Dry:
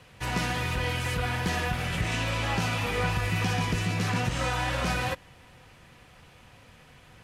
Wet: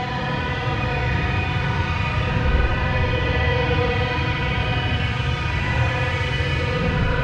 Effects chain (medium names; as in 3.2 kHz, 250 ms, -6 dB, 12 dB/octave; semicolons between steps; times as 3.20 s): level rider; Paulstretch 11×, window 0.05 s, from 0.54 s; distance through air 200 m; on a send: two-band feedback delay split 1.3 kHz, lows 92 ms, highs 517 ms, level -7.5 dB; on the sum: trim -3 dB